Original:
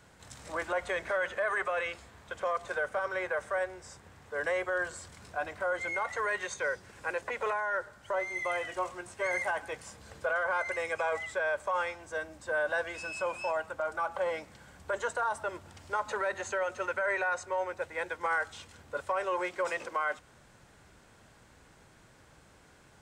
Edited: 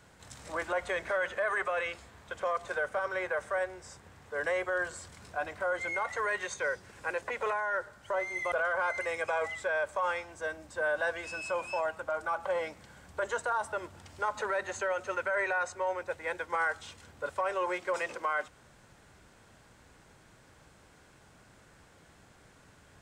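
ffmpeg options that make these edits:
ffmpeg -i in.wav -filter_complex "[0:a]asplit=2[link_01][link_02];[link_01]atrim=end=8.522[link_03];[link_02]atrim=start=10.228[link_04];[link_03][link_04]acrossfade=duration=0.004:curve1=hsin:curve2=hsin" out.wav

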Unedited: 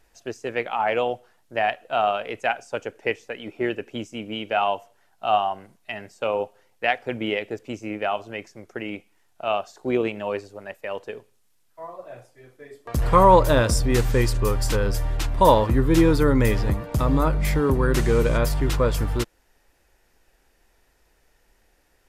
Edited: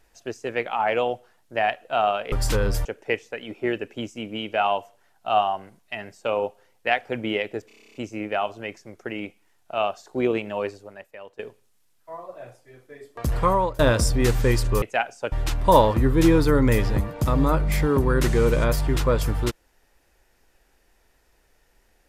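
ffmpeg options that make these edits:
ffmpeg -i in.wav -filter_complex "[0:a]asplit=16[link_01][link_02][link_03][link_04][link_05][link_06][link_07][link_08][link_09][link_10][link_11][link_12][link_13][link_14][link_15][link_16];[link_01]atrim=end=2.322[link_17];[link_02]atrim=start=14.518:end=15.052[link_18];[link_03]atrim=start=2.818:end=7.672[link_19];[link_04]atrim=start=7.638:end=7.672[link_20];[link_05]atrim=start=7.638:end=7.672[link_21];[link_06]atrim=start=7.638:end=7.672[link_22];[link_07]atrim=start=7.638:end=7.672[link_23];[link_08]atrim=start=7.638:end=7.672[link_24];[link_09]atrim=start=7.638:end=7.672[link_25];[link_10]atrim=start=7.638:end=7.672[link_26];[link_11]atrim=start=7.638:end=7.672[link_27];[link_12]atrim=start=7.638:end=11.09,asetpts=PTS-STARTPTS,afade=type=out:start_time=2.792:duration=0.66:curve=qua:silence=0.237137[link_28];[link_13]atrim=start=11.09:end=13.49,asetpts=PTS-STARTPTS,afade=type=in:duration=0.004:curve=hsin:silence=0.237137,afade=type=out:start_time=1.82:duration=0.58:silence=0.0668344[link_29];[link_14]atrim=start=13.49:end=14.522,asetpts=PTS-STARTPTS,afade=type=in:duration=0.004:curve=hsin:silence=0.0668344[link_30];[link_15]atrim=start=2.318:end=2.822[link_31];[link_16]atrim=start=15.048[link_32];[link_17][link_18]acrossfade=duration=0.004:curve1=hsin:curve2=hsin[link_33];[link_33][link_19]acrossfade=duration=0.004:curve1=hsin:curve2=hsin[link_34];[link_34][link_20]acrossfade=duration=0.004:curve1=hsin:curve2=hsin[link_35];[link_35][link_21]acrossfade=duration=0.004:curve1=hsin:curve2=hsin[link_36];[link_36][link_22]acrossfade=duration=0.004:curve1=hsin:curve2=hsin[link_37];[link_37][link_23]acrossfade=duration=0.004:curve1=hsin:curve2=hsin[link_38];[link_38][link_24]acrossfade=duration=0.004:curve1=hsin:curve2=hsin[link_39];[link_39][link_25]acrossfade=duration=0.004:curve1=hsin:curve2=hsin[link_40];[link_40][link_26]acrossfade=duration=0.004:curve1=hsin:curve2=hsin[link_41];[link_41][link_27]acrossfade=duration=0.004:curve1=hsin:curve2=hsin[link_42];[link_28][link_29][link_30]concat=n=3:v=0:a=1[link_43];[link_42][link_43]acrossfade=duration=0.004:curve1=hsin:curve2=hsin[link_44];[link_44][link_31]acrossfade=duration=0.004:curve1=hsin:curve2=hsin[link_45];[link_45][link_32]acrossfade=duration=0.004:curve1=hsin:curve2=hsin" out.wav

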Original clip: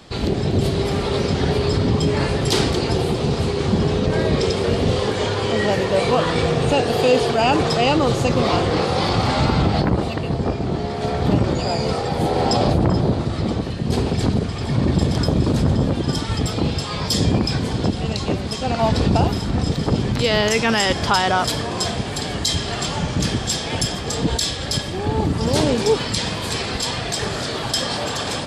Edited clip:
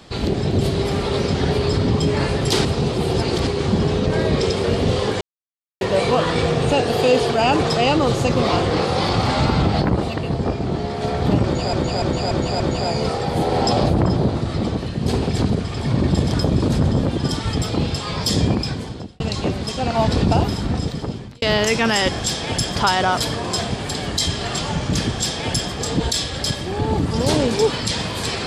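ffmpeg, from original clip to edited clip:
ffmpeg -i in.wav -filter_complex "[0:a]asplit=13[link_01][link_02][link_03][link_04][link_05][link_06][link_07][link_08][link_09][link_10][link_11][link_12][link_13];[link_01]atrim=end=2.652[link_14];[link_02]atrim=start=2.648:end=3.472,asetpts=PTS-STARTPTS,areverse[link_15];[link_03]atrim=start=3.468:end=5.21,asetpts=PTS-STARTPTS,afade=type=out:start_time=1.738:duration=0.004:curve=hsin[link_16];[link_04]atrim=start=5.21:end=5.81,asetpts=PTS-STARTPTS,volume=0[link_17];[link_05]atrim=start=5.81:end=11.732,asetpts=PTS-STARTPTS,afade=type=in:duration=0.004:curve=hsin[link_18];[link_06]atrim=start=11.438:end=11.732[link_19];[link_07]atrim=start=11.438:end=11.732[link_20];[link_08]atrim=start=11.438:end=11.732[link_21];[link_09]atrim=start=11.438:end=18.04,asetpts=PTS-STARTPTS,afade=type=out:start_time=5.862:duration=0.74[link_22];[link_10]atrim=start=18.04:end=20.26,asetpts=PTS-STARTPTS,afade=type=in:duration=0.004:curve=hsin,afade=type=out:start_time=1.43:duration=0.79[link_23];[link_11]atrim=start=20.26:end=21.032,asetpts=PTS-STARTPTS,afade=type=in:duration=0.004:curve=hsin[link_24];[link_12]atrim=start=23.418:end=23.992[link_25];[link_13]atrim=start=21.028[link_26];[link_14][link_15]acrossfade=duration=0.004:curve1=hsin:curve2=hsin[link_27];[link_16][link_17][link_18]concat=n=3:v=0:a=1[link_28];[link_27][link_28]acrossfade=duration=0.004:curve1=hsin:curve2=hsin[link_29];[link_29][link_19]acrossfade=duration=0.004:curve1=hsin:curve2=hsin[link_30];[link_30][link_20]acrossfade=duration=0.004:curve1=hsin:curve2=hsin[link_31];[link_31][link_21]acrossfade=duration=0.004:curve1=hsin:curve2=hsin[link_32];[link_22][link_23][link_24]concat=n=3:v=0:a=1[link_33];[link_32][link_33]acrossfade=duration=0.004:curve1=hsin:curve2=hsin[link_34];[link_34][link_25]acrossfade=duration=0.004:curve1=hsin:curve2=hsin[link_35];[link_35][link_26]acrossfade=duration=0.004:curve1=hsin:curve2=hsin" out.wav

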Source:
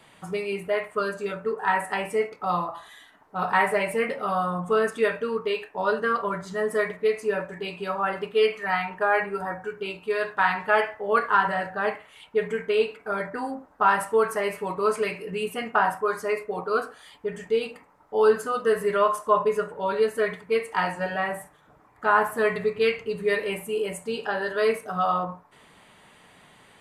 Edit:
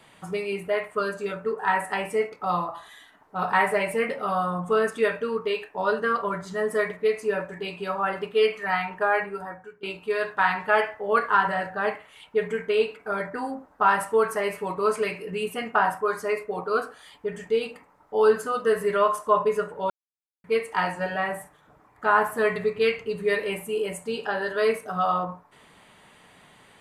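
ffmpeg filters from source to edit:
ffmpeg -i in.wav -filter_complex "[0:a]asplit=4[link_01][link_02][link_03][link_04];[link_01]atrim=end=9.83,asetpts=PTS-STARTPTS,afade=type=out:start_time=9.05:duration=0.78:silence=0.11885[link_05];[link_02]atrim=start=9.83:end=19.9,asetpts=PTS-STARTPTS,afade=type=in:duration=0.004:curve=hsin:silence=0.11885,afade=type=out:start_time=10.066:duration=0.004:curve=hsin[link_06];[link_03]atrim=start=19.9:end=20.44,asetpts=PTS-STARTPTS,volume=0[link_07];[link_04]atrim=start=20.44,asetpts=PTS-STARTPTS,afade=type=in:duration=0.004:curve=hsin[link_08];[link_05][link_06][link_07][link_08]concat=n=4:v=0:a=1" out.wav

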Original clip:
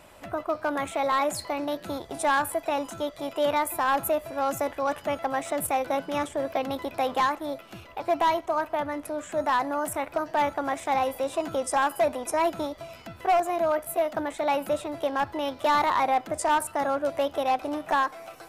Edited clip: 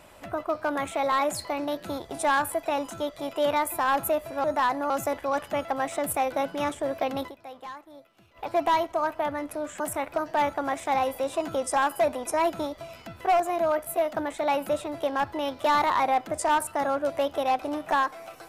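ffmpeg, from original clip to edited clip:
ffmpeg -i in.wav -filter_complex "[0:a]asplit=6[link_01][link_02][link_03][link_04][link_05][link_06];[link_01]atrim=end=4.442[link_07];[link_02]atrim=start=9.338:end=9.802[link_08];[link_03]atrim=start=4.438:end=7.07,asetpts=PTS-STARTPTS,afade=type=out:start_time=2.372:duration=0.26:curve=exp:silence=0.158489[link_09];[link_04]atrim=start=7.07:end=7.67,asetpts=PTS-STARTPTS,volume=-16dB[link_10];[link_05]atrim=start=7.67:end=9.342,asetpts=PTS-STARTPTS,afade=type=in:duration=0.26:curve=exp:silence=0.158489[link_11];[link_06]atrim=start=9.798[link_12];[link_07][link_08]acrossfade=duration=0.004:curve1=hsin:curve2=hsin[link_13];[link_09][link_10][link_11]concat=n=3:v=0:a=1[link_14];[link_13][link_14]acrossfade=duration=0.004:curve1=hsin:curve2=hsin[link_15];[link_15][link_12]acrossfade=duration=0.004:curve1=hsin:curve2=hsin" out.wav

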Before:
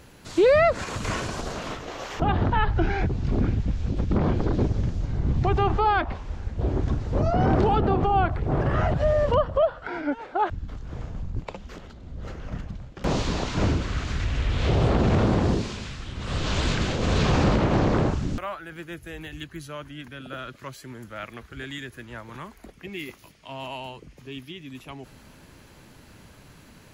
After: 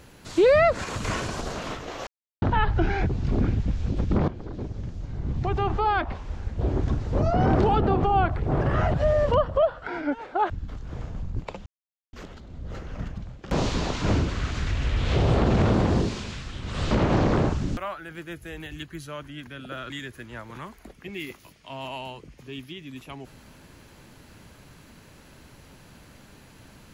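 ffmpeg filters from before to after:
ffmpeg -i in.wav -filter_complex "[0:a]asplit=7[link_01][link_02][link_03][link_04][link_05][link_06][link_07];[link_01]atrim=end=2.07,asetpts=PTS-STARTPTS,afade=type=out:start_time=2.066:duration=0.004:curve=hsin[link_08];[link_02]atrim=start=2.07:end=2.42,asetpts=PTS-STARTPTS,volume=0[link_09];[link_03]atrim=start=2.42:end=4.28,asetpts=PTS-STARTPTS,afade=type=in:duration=0.004:curve=hsin,afade=type=out:start_time=1.856:duration=0.004:curve=hsin:silence=0.16788[link_10];[link_04]atrim=start=4.28:end=11.66,asetpts=PTS-STARTPTS,afade=type=in:duration=2.13:silence=0.16788,afade=type=out:start_time=7.376:duration=0.004:curve=hsin,apad=pad_dur=0.47[link_11];[link_05]atrim=start=11.66:end=16.442,asetpts=PTS-STARTPTS,afade=type=in:duration=0.004:curve=hsin[link_12];[link_06]atrim=start=17.518:end=20.512[link_13];[link_07]atrim=start=21.688[link_14];[link_08][link_09][link_10][link_11][link_12]concat=n=5:v=0:a=1[link_15];[link_15][link_13]acrossfade=duration=0.004:curve1=hsin:curve2=hsin[link_16];[link_16][link_14]acrossfade=duration=0.004:curve1=hsin:curve2=hsin" out.wav

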